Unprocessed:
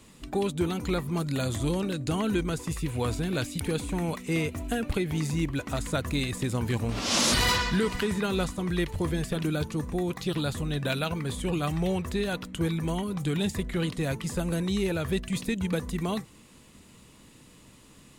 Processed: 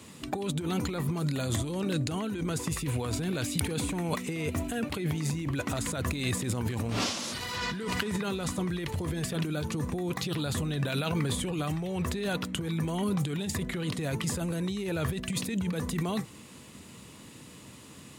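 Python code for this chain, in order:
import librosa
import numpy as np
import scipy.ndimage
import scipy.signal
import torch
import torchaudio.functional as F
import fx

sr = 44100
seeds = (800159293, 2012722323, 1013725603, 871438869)

y = fx.over_compress(x, sr, threshold_db=-32.0, ratio=-1.0)
y = scipy.signal.sosfilt(scipy.signal.butter(4, 73.0, 'highpass', fs=sr, output='sos'), y)
y = y * librosa.db_to_amplitude(1.5)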